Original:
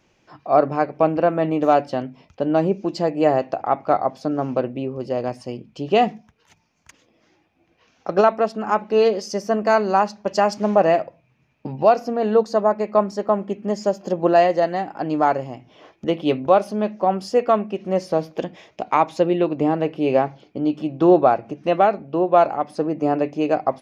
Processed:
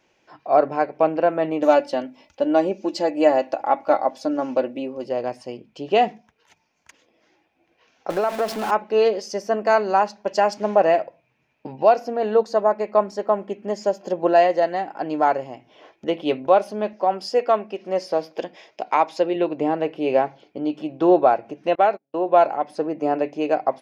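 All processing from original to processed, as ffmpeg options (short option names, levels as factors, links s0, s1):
-filter_complex "[0:a]asettb=1/sr,asplit=3[s0][s1][s2];[s0]atrim=end=1.624[s3];[s1]atrim=start=1.62:end=5.04,asetpts=PTS-STARTPTS,afade=t=in:d=0.004:c=qsin,afade=t=out:st=3.416:d=0.004:c=qsin,bass=f=250:g=-1,treble=f=4000:g=6,aecho=1:1:3.5:0.61,atrim=end_sample=150822[s4];[s2]atrim=start=5.036[s5];[s3][s4]acrossfade=d=0.004:c1=hsin:c2=qsin[s6];[s6][s5]acrossfade=d=0.004:c1=qsin:c2=hsin,asettb=1/sr,asplit=3[s7][s8][s9];[s7]atrim=end=8.104[s10];[s8]atrim=start=8.1:end=8.71,asetpts=PTS-STARTPTS,afade=t=in:d=0.004:c=qsin,afade=t=out:st=0.606:d=0.004:c=qsin,aeval=exprs='val(0)+0.5*0.0631*sgn(val(0))':c=same,acompressor=threshold=0.141:ratio=4:attack=3.2:release=140:knee=1:detection=peak[s11];[s9]atrim=start=8.706[s12];[s10][s11]acrossfade=d=0.004:c1=hsin:c2=qsin[s13];[s13][s12]acrossfade=d=0.004:c1=qsin:c2=hsin,asettb=1/sr,asplit=3[s14][s15][s16];[s14]atrim=end=16.934[s17];[s15]atrim=start=16.93:end=19.36,asetpts=PTS-STARTPTS,afade=t=in:d=0.004:c=qsin,afade=t=out:st=2.426:d=0.004:c=qsin,highpass=f=230:p=1,equalizer=f=5000:t=o:w=0.21:g=8[s18];[s16]atrim=start=19.356[s19];[s17][s18]acrossfade=d=0.004:c1=hsin:c2=qsin[s20];[s20][s19]acrossfade=d=0.004:c1=qsin:c2=hsin,asettb=1/sr,asplit=3[s21][s22][s23];[s21]atrim=end=21.754[s24];[s22]atrim=start=21.75:end=22.26,asetpts=PTS-STARTPTS,afade=t=in:d=0.004:c=qsin,afade=t=out:st=0.506:d=0.004:c=qsin,agate=range=0.02:threshold=0.0355:ratio=16:release=100:detection=peak,lowshelf=f=280:g=-6[s25];[s23]atrim=start=22.256[s26];[s24][s25]acrossfade=d=0.004:c1=hsin:c2=qsin[s27];[s27][s26]acrossfade=d=0.004:c1=qsin:c2=hsin,bass=f=250:g=-11,treble=f=4000:g=-3,bandreject=f=1200:w=9.3"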